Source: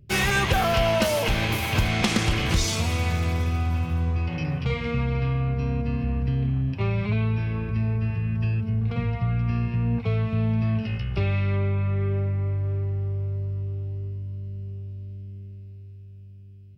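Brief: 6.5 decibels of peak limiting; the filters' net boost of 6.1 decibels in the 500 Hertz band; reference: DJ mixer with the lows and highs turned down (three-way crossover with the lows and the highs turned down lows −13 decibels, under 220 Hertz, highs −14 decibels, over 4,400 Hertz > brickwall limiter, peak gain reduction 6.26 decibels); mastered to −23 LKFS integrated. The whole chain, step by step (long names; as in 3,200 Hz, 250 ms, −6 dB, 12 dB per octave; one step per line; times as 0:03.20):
parametric band 500 Hz +8.5 dB
brickwall limiter −13 dBFS
three-way crossover with the lows and the highs turned down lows −13 dB, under 220 Hz, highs −14 dB, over 4,400 Hz
level +6.5 dB
brickwall limiter −12 dBFS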